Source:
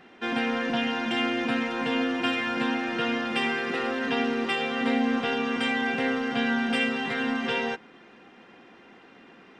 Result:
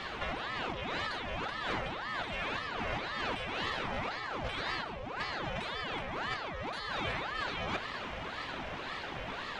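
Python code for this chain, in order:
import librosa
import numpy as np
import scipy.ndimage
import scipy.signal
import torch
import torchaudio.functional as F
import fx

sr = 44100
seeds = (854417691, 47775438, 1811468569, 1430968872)

y = fx.over_compress(x, sr, threshold_db=-38.0, ratio=-1.0)
y = fx.ring_lfo(y, sr, carrier_hz=910.0, swing_pct=70, hz=1.9)
y = F.gain(torch.from_numpy(y), 4.0).numpy()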